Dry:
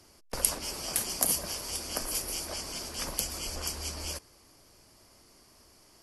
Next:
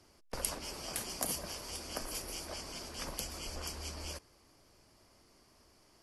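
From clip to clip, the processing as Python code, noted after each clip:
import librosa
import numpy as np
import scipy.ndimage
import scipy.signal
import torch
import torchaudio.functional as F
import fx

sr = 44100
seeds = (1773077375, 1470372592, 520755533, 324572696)

y = fx.high_shelf(x, sr, hz=6200.0, db=-8.0)
y = y * 10.0 ** (-4.0 / 20.0)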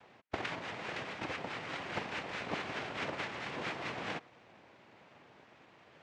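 y = fx.rider(x, sr, range_db=4, speed_s=0.5)
y = fx.noise_vocoder(y, sr, seeds[0], bands=2)
y = fx.lowpass_res(y, sr, hz=2200.0, q=1.5)
y = y * 10.0 ** (4.5 / 20.0)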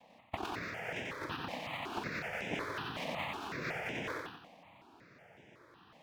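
y = scipy.signal.medfilt(x, 5)
y = fx.echo_feedback(y, sr, ms=91, feedback_pct=47, wet_db=-3.0)
y = fx.phaser_held(y, sr, hz=5.4, low_hz=380.0, high_hz=4300.0)
y = y * 10.0 ** (1.5 / 20.0)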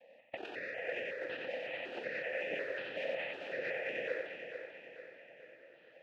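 y = fx.vowel_filter(x, sr, vowel='e')
y = fx.echo_feedback(y, sr, ms=442, feedback_pct=48, wet_db=-8)
y = y * 10.0 ** (10.5 / 20.0)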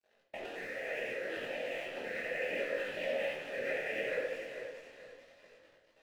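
y = np.sign(x) * np.maximum(np.abs(x) - 10.0 ** (-56.5 / 20.0), 0.0)
y = fx.room_shoebox(y, sr, seeds[1], volume_m3=210.0, walls='mixed', distance_m=1.3)
y = fx.detune_double(y, sr, cents=24)
y = y * 10.0 ** (2.5 / 20.0)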